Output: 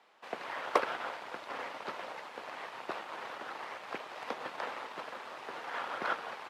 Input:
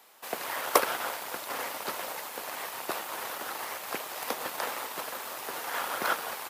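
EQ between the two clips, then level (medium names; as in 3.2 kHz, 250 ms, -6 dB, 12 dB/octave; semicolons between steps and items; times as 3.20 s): high-pass 87 Hz; low-pass 3.2 kHz 12 dB/octave; -4.5 dB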